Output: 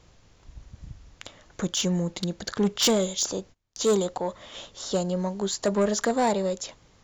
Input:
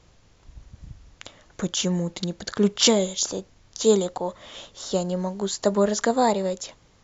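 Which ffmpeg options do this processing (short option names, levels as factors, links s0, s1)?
-filter_complex "[0:a]asettb=1/sr,asplit=3[s0][s1][s2];[s0]atrim=end=2.574[s3];[s1]atrim=start=2.57:end=4.67,asetpts=PTS-STARTPTS,afade=t=in:d=0.004:c=qsin,afade=t=out:st=2.096:d=0.004:c=qsin,agate=range=0.0562:threshold=0.00708:ratio=16:detection=peak[s4];[s2]atrim=start=4.666[s5];[s3][s4]acrossfade=d=0.004:c1=hsin:c2=qsin[s6];[s6][s5]acrossfade=d=0.004:c1=qsin:c2=hsin,asoftclip=type=tanh:threshold=0.158"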